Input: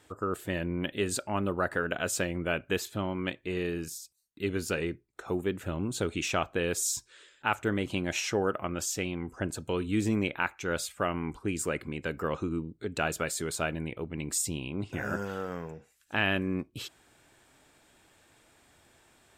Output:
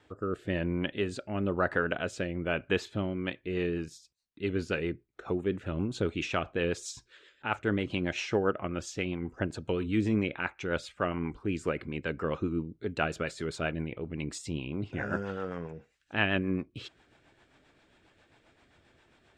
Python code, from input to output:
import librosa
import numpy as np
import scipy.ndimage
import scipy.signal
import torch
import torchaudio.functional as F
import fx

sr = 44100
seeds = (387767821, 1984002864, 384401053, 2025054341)

y = scipy.signal.sosfilt(scipy.signal.butter(2, 3900.0, 'lowpass', fs=sr, output='sos'), x)
y = fx.quant_float(y, sr, bits=8)
y = fx.rotary_switch(y, sr, hz=1.0, then_hz=7.5, switch_at_s=3.02)
y = y * librosa.db_to_amplitude(2.0)